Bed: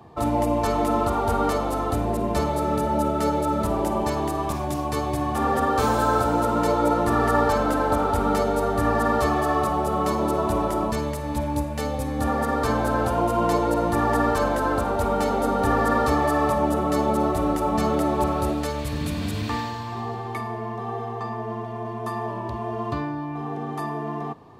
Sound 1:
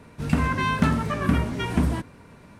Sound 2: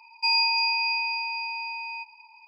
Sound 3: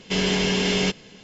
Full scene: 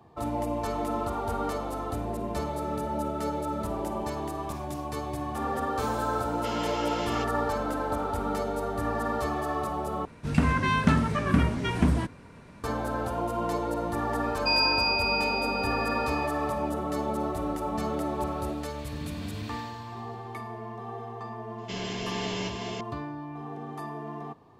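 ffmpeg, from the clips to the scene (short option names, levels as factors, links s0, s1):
-filter_complex "[3:a]asplit=2[s0][s1];[0:a]volume=0.398[s2];[s0]highpass=f=740:t=q:w=2.2[s3];[1:a]lowpass=10000[s4];[s1]aecho=1:1:379:0.708[s5];[s2]asplit=2[s6][s7];[s6]atrim=end=10.054[s8];[s4]atrim=end=2.59,asetpts=PTS-STARTPTS,volume=0.891[s9];[s7]atrim=start=12.636[s10];[s3]atrim=end=1.23,asetpts=PTS-STARTPTS,volume=0.188,afade=t=in:d=0.004:c=hsin,afade=t=out:st=1.226:d=0.004:c=hsin,adelay=6330[s11];[2:a]atrim=end=2.47,asetpts=PTS-STARTPTS,volume=0.794,afade=t=in:d=0.004:c=hsin,afade=t=out:st=2.466:d=0.004:c=hsin,adelay=14230[s12];[s5]atrim=end=1.23,asetpts=PTS-STARTPTS,volume=0.224,afade=t=in:d=0.004:c=hsin,afade=t=out:st=1.226:d=0.004:c=hsin,adelay=21580[s13];[s8][s9]acrossfade=d=0.004:c1=hsin:c2=hsin[s14];[s14][s10]acrossfade=d=0.004:c1=hsin:c2=hsin[s15];[s15][s11][s12][s13]amix=inputs=4:normalize=0"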